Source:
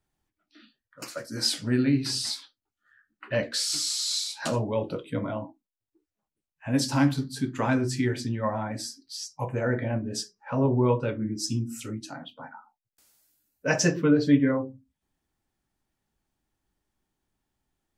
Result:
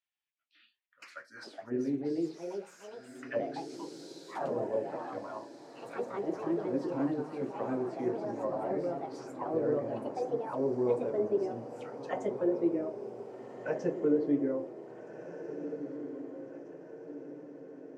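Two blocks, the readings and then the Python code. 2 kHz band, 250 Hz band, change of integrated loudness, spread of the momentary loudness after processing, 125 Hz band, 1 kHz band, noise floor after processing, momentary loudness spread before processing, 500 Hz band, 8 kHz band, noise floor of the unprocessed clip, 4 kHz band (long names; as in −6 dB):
−13.5 dB, −7.0 dB, −7.5 dB, 17 LU, −17.0 dB, −4.5 dB, −66 dBFS, 14 LU, −1.0 dB, below −25 dB, below −85 dBFS, below −20 dB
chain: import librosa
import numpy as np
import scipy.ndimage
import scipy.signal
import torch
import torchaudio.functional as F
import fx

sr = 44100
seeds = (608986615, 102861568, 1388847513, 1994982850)

y = fx.echo_pitch(x, sr, ms=606, semitones=3, count=3, db_per_echo=-3.0)
y = fx.auto_wah(y, sr, base_hz=430.0, top_hz=2700.0, q=2.2, full_db=-21.5, direction='down')
y = fx.echo_diffused(y, sr, ms=1645, feedback_pct=53, wet_db=-10.0)
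y = y * 10.0 ** (-2.5 / 20.0)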